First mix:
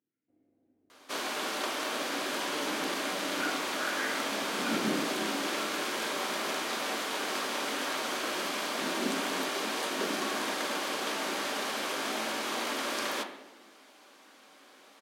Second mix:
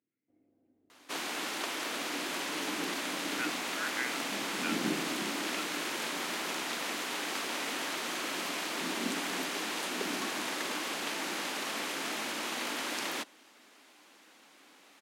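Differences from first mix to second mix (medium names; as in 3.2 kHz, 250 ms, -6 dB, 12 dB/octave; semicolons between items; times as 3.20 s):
speech +11.5 dB; reverb: off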